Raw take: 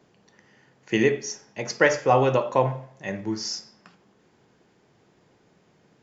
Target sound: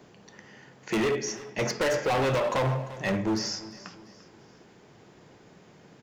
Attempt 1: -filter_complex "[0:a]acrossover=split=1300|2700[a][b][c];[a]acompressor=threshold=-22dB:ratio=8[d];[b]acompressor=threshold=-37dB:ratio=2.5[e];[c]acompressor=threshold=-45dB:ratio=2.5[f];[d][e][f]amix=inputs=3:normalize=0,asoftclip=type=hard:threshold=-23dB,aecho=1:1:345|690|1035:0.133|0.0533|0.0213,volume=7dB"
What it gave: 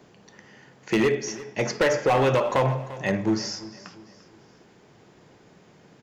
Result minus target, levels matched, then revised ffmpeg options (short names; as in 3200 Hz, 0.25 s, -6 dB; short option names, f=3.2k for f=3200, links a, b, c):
hard clip: distortion -5 dB
-filter_complex "[0:a]acrossover=split=1300|2700[a][b][c];[a]acompressor=threshold=-22dB:ratio=8[d];[b]acompressor=threshold=-37dB:ratio=2.5[e];[c]acompressor=threshold=-45dB:ratio=2.5[f];[d][e][f]amix=inputs=3:normalize=0,asoftclip=type=hard:threshold=-30dB,aecho=1:1:345|690|1035:0.133|0.0533|0.0213,volume=7dB"